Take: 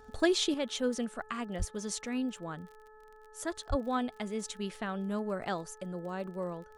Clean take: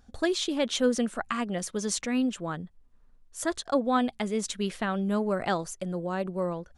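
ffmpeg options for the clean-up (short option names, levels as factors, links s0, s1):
-filter_complex "[0:a]adeclick=t=4,bandreject=f=431.5:t=h:w=4,bandreject=f=863:t=h:w=4,bandreject=f=1294.5:t=h:w=4,bandreject=f=1726:t=h:w=4,asplit=3[s0][s1][s2];[s0]afade=t=out:st=1.58:d=0.02[s3];[s1]highpass=f=140:w=0.5412,highpass=f=140:w=1.3066,afade=t=in:st=1.58:d=0.02,afade=t=out:st=1.7:d=0.02[s4];[s2]afade=t=in:st=1.7:d=0.02[s5];[s3][s4][s5]amix=inputs=3:normalize=0,asplit=3[s6][s7][s8];[s6]afade=t=out:st=3.69:d=0.02[s9];[s7]highpass=f=140:w=0.5412,highpass=f=140:w=1.3066,afade=t=in:st=3.69:d=0.02,afade=t=out:st=3.81:d=0.02[s10];[s8]afade=t=in:st=3.81:d=0.02[s11];[s9][s10][s11]amix=inputs=3:normalize=0,asetnsamples=n=441:p=0,asendcmd='0.54 volume volume 7dB',volume=1"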